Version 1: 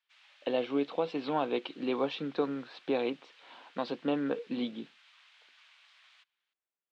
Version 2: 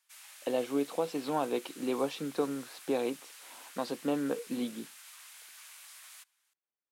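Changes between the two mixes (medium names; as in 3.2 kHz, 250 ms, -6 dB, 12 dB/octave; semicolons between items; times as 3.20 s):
speech -8.0 dB; master: remove four-pole ladder low-pass 4.2 kHz, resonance 35%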